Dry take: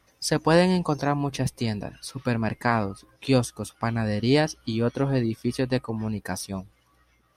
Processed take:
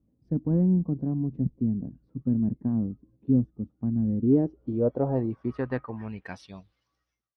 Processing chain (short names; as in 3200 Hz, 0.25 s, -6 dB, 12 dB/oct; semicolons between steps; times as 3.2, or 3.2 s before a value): ending faded out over 1.97 s; one-sided clip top -13 dBFS; low-pass sweep 240 Hz -> 6200 Hz, 4.05–7.07; gain -4 dB